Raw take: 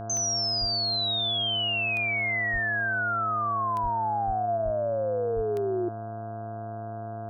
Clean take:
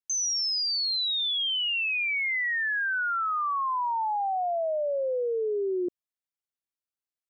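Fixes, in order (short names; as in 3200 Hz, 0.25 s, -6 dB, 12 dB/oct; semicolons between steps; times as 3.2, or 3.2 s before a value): de-click; de-hum 108.5 Hz, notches 15; notch 690 Hz, Q 30; de-plosive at 0.6/2.52/3.82/4.26/4.64/5.35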